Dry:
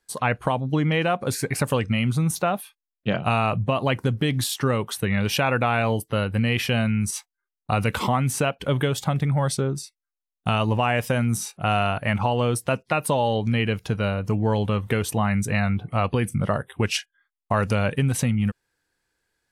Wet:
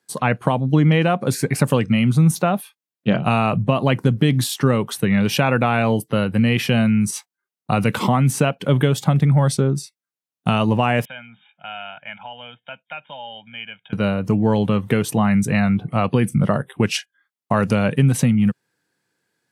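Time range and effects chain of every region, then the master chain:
11.05–13.93 s: brick-wall FIR low-pass 3.7 kHz + differentiator + comb 1.3 ms, depth 88%
whole clip: high-pass 140 Hz 24 dB/octave; bass shelf 230 Hz +11.5 dB; trim +2 dB

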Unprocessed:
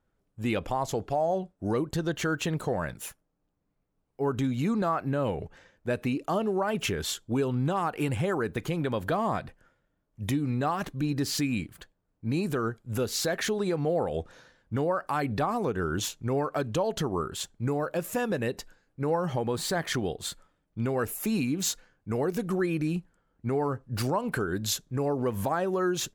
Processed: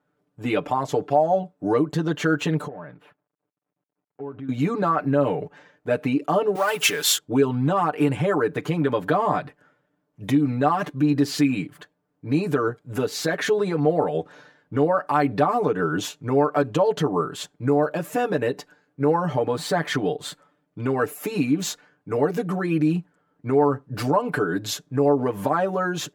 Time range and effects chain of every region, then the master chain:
2.67–4.49 s: companding laws mixed up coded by A + compression 5:1, threshold -39 dBFS + distance through air 450 m
6.55–7.18 s: companding laws mixed up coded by mu + tilt EQ +4.5 dB/octave
whole clip: high-pass 180 Hz 12 dB/octave; treble shelf 3.5 kHz -11 dB; comb 6.8 ms, depth 98%; trim +5 dB

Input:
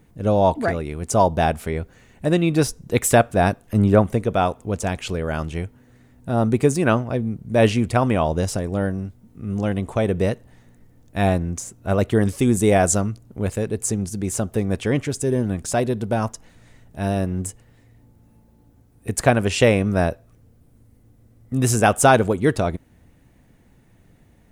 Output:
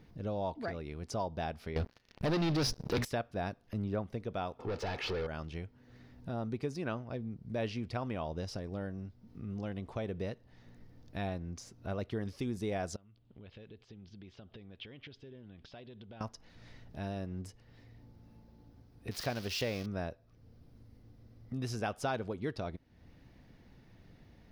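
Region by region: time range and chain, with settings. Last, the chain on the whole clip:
1.76–3.05 s: peaking EQ 2.2 kHz -2.5 dB 0.31 oct + hum notches 60/120/180/240 Hz + waveshaping leveller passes 5
4.59–5.27 s: overdrive pedal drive 30 dB, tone 1.8 kHz, clips at -12 dBFS + comb 2.3 ms, depth 35% + tape noise reduction on one side only decoder only
12.96–16.21 s: compression, threshold -33 dBFS + four-pole ladder low-pass 3.7 kHz, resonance 60%
19.11–19.86 s: zero-crossing glitches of -11.5 dBFS + treble shelf 10 kHz -6 dB
whole clip: compression 2:1, threshold -42 dBFS; resonant high shelf 6.3 kHz -8.5 dB, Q 3; trim -4 dB

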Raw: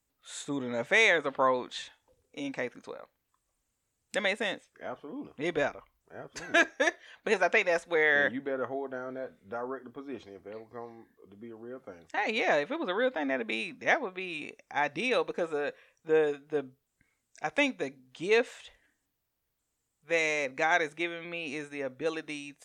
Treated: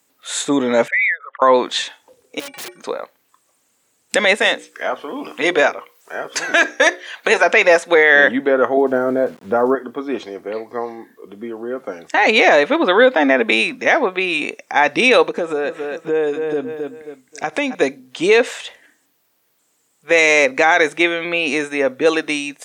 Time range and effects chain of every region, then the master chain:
0.88–1.42 s: resonances exaggerated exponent 3 + high-pass 1.3 kHz 24 dB/octave + compression 2:1, threshold -42 dBFS
2.39–2.79 s: inharmonic resonator 170 Hz, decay 0.25 s, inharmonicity 0.03 + integer overflow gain 44 dB + whistle 8.7 kHz -79 dBFS
4.39–7.44 s: bass shelf 350 Hz -8.5 dB + hum notches 60/120/180/240/300/360/420/480/540 Hz + tape noise reduction on one side only encoder only
8.77–9.75 s: tilt EQ -3 dB/octave + small samples zeroed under -58 dBFS
15.27–17.75 s: bass shelf 320 Hz +7.5 dB + feedback delay 267 ms, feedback 30%, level -13.5 dB + compression 3:1, threshold -38 dBFS
whole clip: high-pass 240 Hz 12 dB/octave; loudness maximiser +19.5 dB; trim -1 dB

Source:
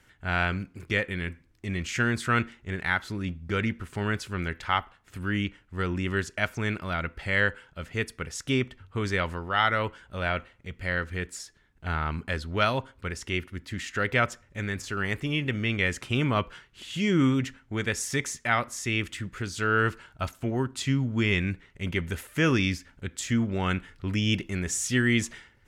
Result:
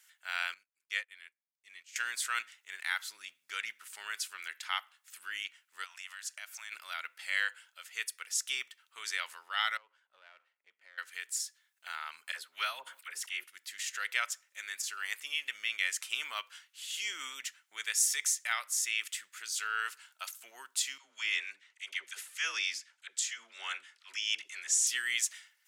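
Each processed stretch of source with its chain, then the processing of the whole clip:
0.54–1.96 s: treble shelf 6.7 kHz -5.5 dB + upward expansion 2.5:1, over -43 dBFS
5.84–6.72 s: brick-wall FIR high-pass 560 Hz + compression 3:1, threshold -37 dBFS
9.77–10.98 s: partial rectifier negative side -7 dB + band-pass filter 280 Hz, Q 0.57 + compression, threshold -38 dBFS
12.32–13.44 s: peaking EQ 5.8 kHz -7.5 dB 1.4 oct + phase dispersion lows, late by 50 ms, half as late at 920 Hz + decay stretcher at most 120 dB/s
20.98–24.87 s: band-pass 260–7300 Hz + phase dispersion lows, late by 79 ms, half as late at 570 Hz
whole clip: high-pass 870 Hz 12 dB/octave; differentiator; trim +5.5 dB

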